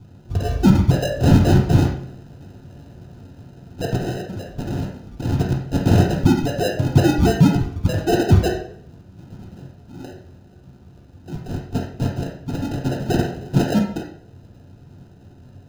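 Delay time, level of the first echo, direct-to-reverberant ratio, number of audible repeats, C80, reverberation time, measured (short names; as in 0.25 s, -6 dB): none, none, -2.0 dB, none, 9.0 dB, 0.60 s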